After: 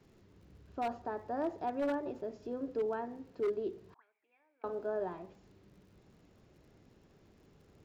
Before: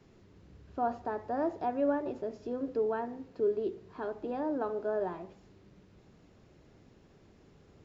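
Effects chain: crackle 69 per s -56 dBFS; wavefolder -23.5 dBFS; 3.94–4.64 s: auto-wah 710–2300 Hz, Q 20, up, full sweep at -35.5 dBFS; trim -3.5 dB

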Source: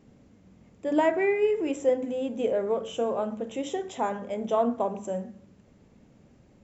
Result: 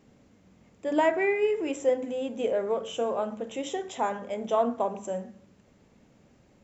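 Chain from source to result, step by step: bass shelf 450 Hz -6.5 dB; trim +2 dB

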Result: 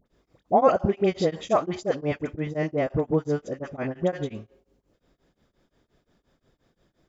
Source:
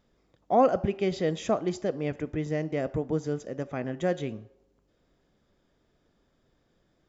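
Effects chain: 2.28–4.29 s: treble shelf 5.4 kHz -7 dB; phase dispersion highs, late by 60 ms, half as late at 1.1 kHz; dynamic bell 1 kHz, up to +5 dB, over -41 dBFS, Q 1.1; tremolo of two beating tones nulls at 5.7 Hz; trim +5 dB

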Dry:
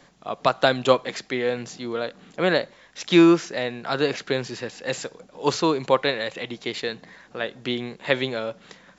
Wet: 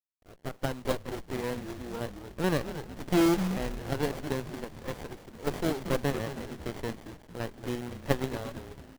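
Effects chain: fade-in on the opening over 1.31 s; frequency-shifting echo 226 ms, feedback 48%, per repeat -150 Hz, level -8 dB; dynamic bell 5.9 kHz, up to +6 dB, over -47 dBFS, Q 1.4; companded quantiser 4-bit; sliding maximum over 33 samples; trim -9 dB

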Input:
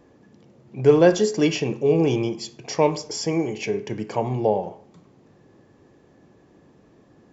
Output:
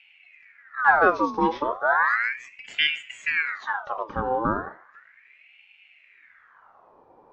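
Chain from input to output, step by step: knee-point frequency compression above 3.3 kHz 1.5:1; tilt EQ -3.5 dB/octave; ring modulator with a swept carrier 1.6 kHz, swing 60%, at 0.35 Hz; trim -5.5 dB

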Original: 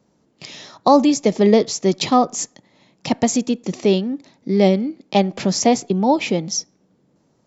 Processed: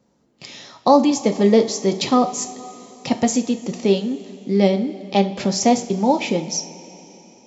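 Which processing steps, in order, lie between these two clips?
two-slope reverb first 0.31 s, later 3.7 s, from -18 dB, DRR 6.5 dB; trim -2 dB

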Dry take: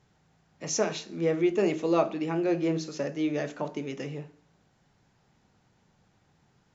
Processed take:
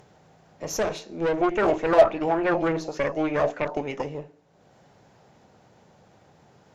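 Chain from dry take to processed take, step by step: high-pass 58 Hz; peaking EQ 570 Hz +10 dB 1.3 oct; upward compressor, threshold -43 dBFS; valve stage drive 22 dB, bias 0.7; 1.41–4.03 s: sweeping bell 3.4 Hz 660–2400 Hz +13 dB; trim +1.5 dB

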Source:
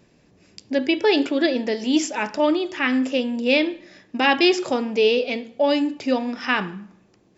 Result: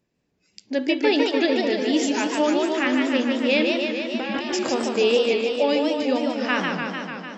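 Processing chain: 3.69–4.69 s: compressor with a negative ratio -26 dBFS, ratio -1; spectral noise reduction 15 dB; modulated delay 149 ms, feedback 74%, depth 172 cents, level -4 dB; trim -2.5 dB

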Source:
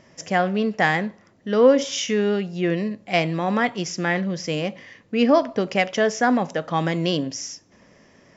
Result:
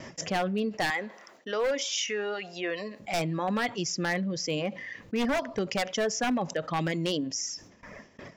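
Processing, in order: gate with hold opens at -42 dBFS; reverb removal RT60 1.4 s; 0.90–3.00 s: high-pass 560 Hz 12 dB/octave; wavefolder -14.5 dBFS; level flattener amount 50%; trim -7.5 dB

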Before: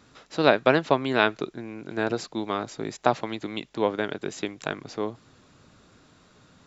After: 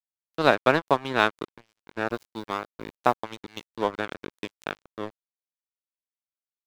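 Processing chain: 2.07–3.22 s: modulation noise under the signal 30 dB; crossover distortion -30 dBFS; dynamic bell 1.1 kHz, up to +5 dB, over -36 dBFS, Q 1.4; trim -1 dB

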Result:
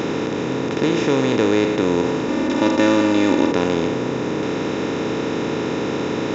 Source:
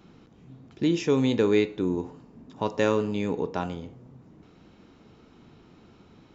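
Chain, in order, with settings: spectral levelling over time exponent 0.2; 2.28–3.52 s: comb 3.4 ms, depth 72%

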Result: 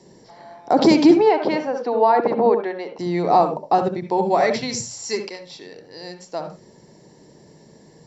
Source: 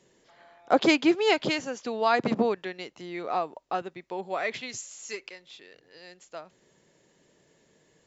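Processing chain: peak limiter -18.5 dBFS, peak gain reduction 11 dB; 1.17–2.99 s: band-pass 450–2100 Hz; reverberation RT60 0.20 s, pre-delay 61 ms, DRR 6.5 dB; trim +6.5 dB

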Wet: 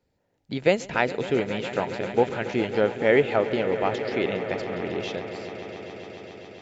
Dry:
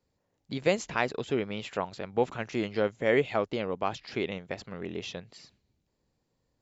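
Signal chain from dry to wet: tone controls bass -2 dB, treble -7 dB; band-stop 1.1 kHz, Q 5.8; on a send: echo with a slow build-up 137 ms, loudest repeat 5, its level -16 dB; on the sum: trim +5.5 dB

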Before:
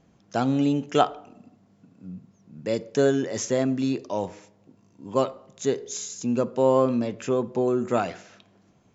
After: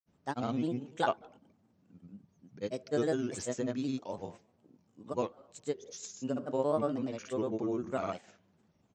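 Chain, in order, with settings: granulator, pitch spread up and down by 3 st; trim -9 dB

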